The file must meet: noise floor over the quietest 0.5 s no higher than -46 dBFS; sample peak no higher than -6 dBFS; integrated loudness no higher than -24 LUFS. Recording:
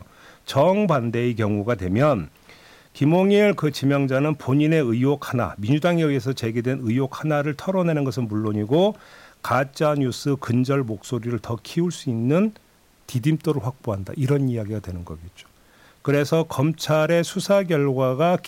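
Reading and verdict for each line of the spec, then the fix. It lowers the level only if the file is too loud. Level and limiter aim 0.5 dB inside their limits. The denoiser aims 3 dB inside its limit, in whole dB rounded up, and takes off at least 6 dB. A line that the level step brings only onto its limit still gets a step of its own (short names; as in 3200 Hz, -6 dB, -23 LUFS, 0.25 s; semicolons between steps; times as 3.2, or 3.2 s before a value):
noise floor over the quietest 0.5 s -57 dBFS: OK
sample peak -8.0 dBFS: OK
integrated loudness -22.0 LUFS: fail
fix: gain -2.5 dB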